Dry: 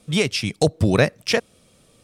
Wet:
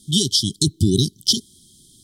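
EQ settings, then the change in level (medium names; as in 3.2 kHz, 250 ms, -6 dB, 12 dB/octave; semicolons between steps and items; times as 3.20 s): brick-wall FIR band-stop 410–3000 Hz; treble shelf 2.1 kHz +8.5 dB; +1.5 dB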